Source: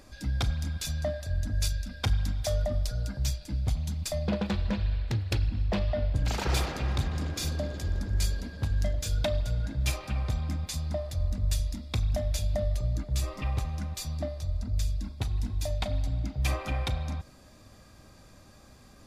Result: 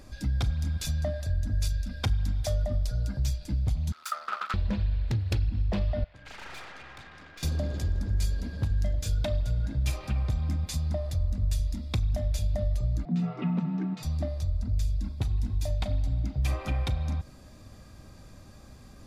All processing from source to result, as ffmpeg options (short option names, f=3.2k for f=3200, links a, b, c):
-filter_complex "[0:a]asettb=1/sr,asplit=3[a][b][c];[a]atrim=end=3.924[d];[b]atrim=start=3.92:end=4.54,asetpts=PTS-STARTPTS,afade=t=in:d=0.004:c=qsin,afade=t=out:st=0.616:d=0.004:c=qsin,aeval=exprs='max(val(0),0)':c=same,highpass=f=1.3k:t=q:w=16[e];[c]atrim=start=4.536[f];[d][e]acrossfade=d=0.004:c1=hsin:c2=qsin[g];[g][f]acrossfade=d=0.004:c1=qsin:c2=hsin,asettb=1/sr,asplit=3[h][i][j];[h]atrim=end=6.044[k];[i]atrim=start=6.04:end=7.43,asetpts=PTS-STARTPTS,afade=t=in:d=0.004:c=qsin,afade=t=out:st=1.386:d=0.004:c=qsin,bandpass=f=1.8k:t=q:w=1.3,aeval=exprs='(tanh(100*val(0)+0.55)-tanh(0.55))/100':c=same[l];[j]atrim=start=7.426[m];[k][l]acrossfade=d=0.004:c1=hsin:c2=qsin[n];[n][m]acrossfade=d=0.004:c1=qsin:c2=hsin,asettb=1/sr,asplit=3[o][p][q];[o]atrim=end=13.054[r];[p]atrim=start=13.05:end=14.03,asetpts=PTS-STARTPTS,afade=t=in:d=0.004:c=qsin,afade=t=out:st=0.976:d=0.004:c=qsin,lowpass=2.4k,afreqshift=110[s];[q]atrim=start=14.026[t];[r][s]acrossfade=d=0.004:c1=hsin:c2=qsin[u];[u][t]acrossfade=d=0.004:c1=qsin:c2=hsin,lowshelf=f=270:g=6.5,acompressor=threshold=-27dB:ratio=2"